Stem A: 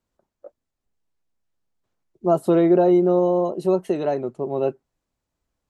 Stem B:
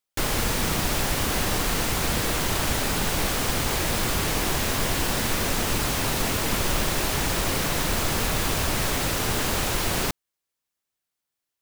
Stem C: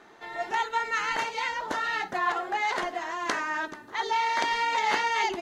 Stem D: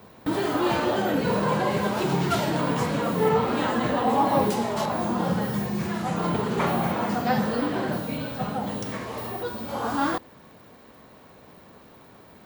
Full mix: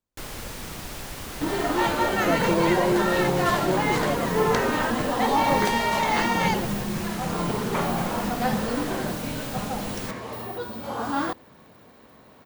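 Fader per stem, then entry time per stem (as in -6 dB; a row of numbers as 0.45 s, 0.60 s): -7.5 dB, -11.5 dB, +1.0 dB, -1.5 dB; 0.00 s, 0.00 s, 1.25 s, 1.15 s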